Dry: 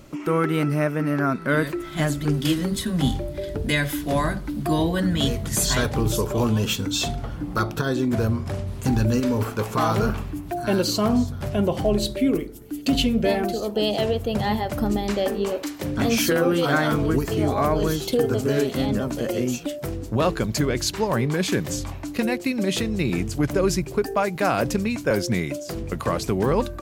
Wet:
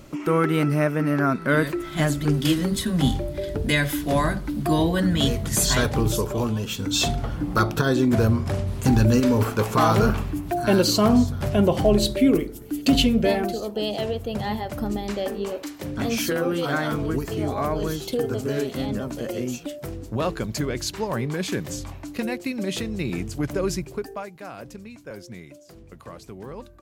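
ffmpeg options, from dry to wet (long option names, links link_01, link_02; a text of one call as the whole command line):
ffmpeg -i in.wav -af "volume=10.5dB,afade=type=out:start_time=5.96:duration=0.74:silence=0.421697,afade=type=in:start_time=6.7:duration=0.32:silence=0.334965,afade=type=out:start_time=12.89:duration=0.85:silence=0.446684,afade=type=out:start_time=23.74:duration=0.61:silence=0.237137" out.wav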